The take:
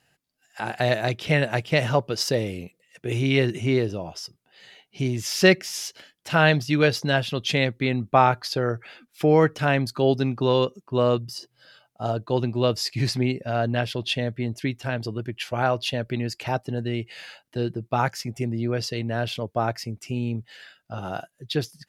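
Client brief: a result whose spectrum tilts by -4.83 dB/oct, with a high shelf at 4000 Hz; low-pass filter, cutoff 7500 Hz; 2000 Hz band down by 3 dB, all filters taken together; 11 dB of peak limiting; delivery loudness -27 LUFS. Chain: LPF 7500 Hz; bell 2000 Hz -6 dB; high shelf 4000 Hz +8 dB; gain +0.5 dB; limiter -14 dBFS

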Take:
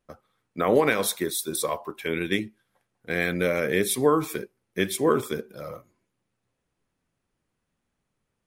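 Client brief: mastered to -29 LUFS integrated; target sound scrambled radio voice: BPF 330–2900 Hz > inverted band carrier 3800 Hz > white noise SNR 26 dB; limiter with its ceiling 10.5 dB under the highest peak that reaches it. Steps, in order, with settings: limiter -18.5 dBFS; BPF 330–2900 Hz; inverted band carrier 3800 Hz; white noise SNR 26 dB; gain +1 dB

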